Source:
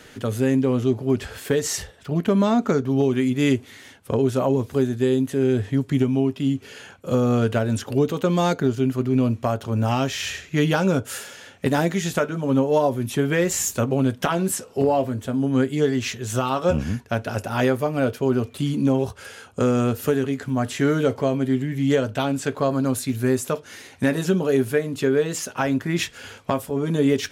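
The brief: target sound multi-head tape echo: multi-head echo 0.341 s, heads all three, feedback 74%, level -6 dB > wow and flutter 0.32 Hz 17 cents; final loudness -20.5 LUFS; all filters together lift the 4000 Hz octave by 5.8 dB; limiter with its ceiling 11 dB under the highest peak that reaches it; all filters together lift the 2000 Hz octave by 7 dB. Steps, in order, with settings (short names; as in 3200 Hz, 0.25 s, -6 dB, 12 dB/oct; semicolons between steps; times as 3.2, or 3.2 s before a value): bell 2000 Hz +8 dB; bell 4000 Hz +4.5 dB; limiter -14 dBFS; multi-head echo 0.341 s, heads all three, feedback 74%, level -6 dB; wow and flutter 0.32 Hz 17 cents; gain -1 dB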